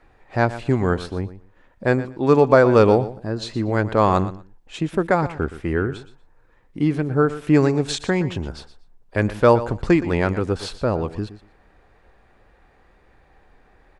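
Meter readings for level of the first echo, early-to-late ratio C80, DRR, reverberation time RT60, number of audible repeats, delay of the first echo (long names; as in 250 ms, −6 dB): −14.5 dB, no reverb audible, no reverb audible, no reverb audible, 2, 119 ms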